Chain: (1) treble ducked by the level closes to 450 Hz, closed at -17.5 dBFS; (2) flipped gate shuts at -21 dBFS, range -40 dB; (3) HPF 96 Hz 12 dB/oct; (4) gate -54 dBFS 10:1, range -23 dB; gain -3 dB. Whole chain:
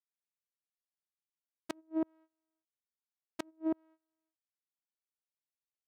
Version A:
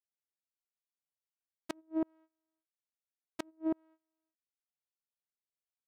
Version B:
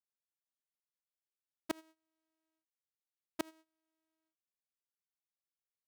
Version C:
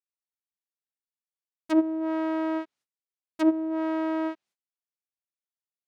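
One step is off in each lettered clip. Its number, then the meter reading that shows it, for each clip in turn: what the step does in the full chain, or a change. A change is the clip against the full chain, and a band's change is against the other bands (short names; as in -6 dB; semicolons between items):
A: 3, crest factor change -2.5 dB; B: 1, 250 Hz band -11.5 dB; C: 2, momentary loudness spread change -4 LU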